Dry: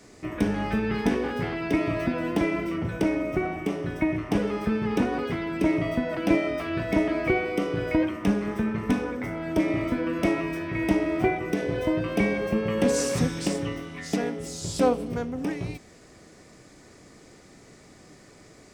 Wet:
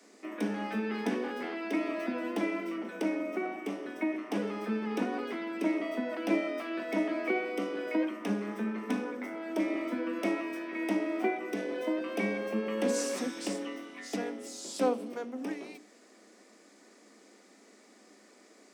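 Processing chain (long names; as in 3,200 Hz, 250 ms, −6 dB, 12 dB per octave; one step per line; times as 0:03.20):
Butterworth high-pass 200 Hz 96 dB per octave
mains-hum notches 60/120/180/240/300/360/420 Hz
level −6 dB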